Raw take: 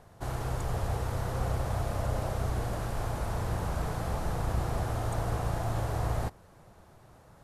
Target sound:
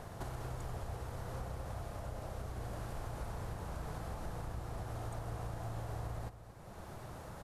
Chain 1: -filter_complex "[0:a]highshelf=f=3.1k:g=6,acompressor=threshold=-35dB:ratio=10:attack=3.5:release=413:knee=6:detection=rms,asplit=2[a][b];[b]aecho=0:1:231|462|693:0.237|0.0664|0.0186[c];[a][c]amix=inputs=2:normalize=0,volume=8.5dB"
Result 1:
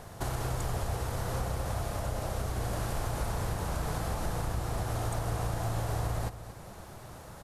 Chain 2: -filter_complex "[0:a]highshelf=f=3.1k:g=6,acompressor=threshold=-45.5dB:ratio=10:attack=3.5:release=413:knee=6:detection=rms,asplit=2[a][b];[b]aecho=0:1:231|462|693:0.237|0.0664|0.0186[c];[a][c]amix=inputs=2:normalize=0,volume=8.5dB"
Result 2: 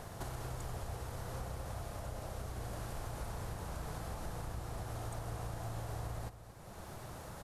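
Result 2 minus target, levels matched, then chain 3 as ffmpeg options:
8000 Hz band +5.0 dB
-filter_complex "[0:a]acompressor=threshold=-45.5dB:ratio=10:attack=3.5:release=413:knee=6:detection=rms,asplit=2[a][b];[b]aecho=0:1:231|462|693:0.237|0.0664|0.0186[c];[a][c]amix=inputs=2:normalize=0,volume=8.5dB"

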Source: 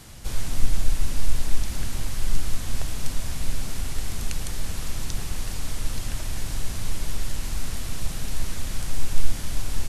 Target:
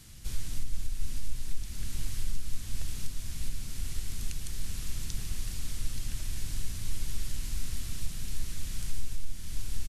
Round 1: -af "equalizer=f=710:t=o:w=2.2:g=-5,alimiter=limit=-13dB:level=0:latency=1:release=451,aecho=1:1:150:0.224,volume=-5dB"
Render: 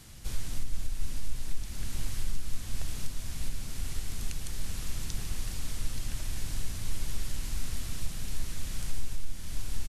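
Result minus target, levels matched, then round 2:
1000 Hz band +5.0 dB
-af "equalizer=f=710:t=o:w=2.2:g=-12,alimiter=limit=-13dB:level=0:latency=1:release=451,aecho=1:1:150:0.224,volume=-5dB"

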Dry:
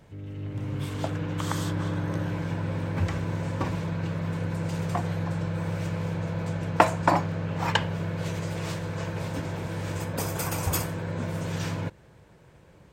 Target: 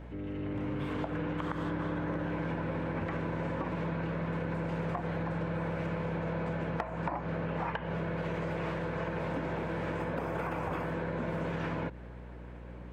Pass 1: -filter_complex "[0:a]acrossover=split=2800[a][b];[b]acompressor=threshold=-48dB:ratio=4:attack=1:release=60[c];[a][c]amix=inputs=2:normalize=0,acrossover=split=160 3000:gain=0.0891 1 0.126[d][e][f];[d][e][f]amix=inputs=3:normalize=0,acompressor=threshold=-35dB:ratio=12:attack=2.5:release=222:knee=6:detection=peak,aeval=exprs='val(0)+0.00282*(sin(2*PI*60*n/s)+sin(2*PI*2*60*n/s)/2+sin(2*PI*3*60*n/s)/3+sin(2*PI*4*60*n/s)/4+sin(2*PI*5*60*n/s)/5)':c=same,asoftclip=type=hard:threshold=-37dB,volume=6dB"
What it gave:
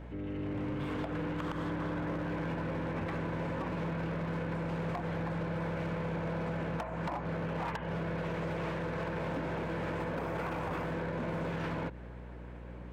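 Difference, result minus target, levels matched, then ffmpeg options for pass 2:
hard clip: distortion +30 dB
-filter_complex "[0:a]acrossover=split=2800[a][b];[b]acompressor=threshold=-48dB:ratio=4:attack=1:release=60[c];[a][c]amix=inputs=2:normalize=0,acrossover=split=160 3000:gain=0.0891 1 0.126[d][e][f];[d][e][f]amix=inputs=3:normalize=0,acompressor=threshold=-35dB:ratio=12:attack=2.5:release=222:knee=6:detection=peak,aeval=exprs='val(0)+0.00282*(sin(2*PI*60*n/s)+sin(2*PI*2*60*n/s)/2+sin(2*PI*3*60*n/s)/3+sin(2*PI*4*60*n/s)/4+sin(2*PI*5*60*n/s)/5)':c=same,asoftclip=type=hard:threshold=-26dB,volume=6dB"

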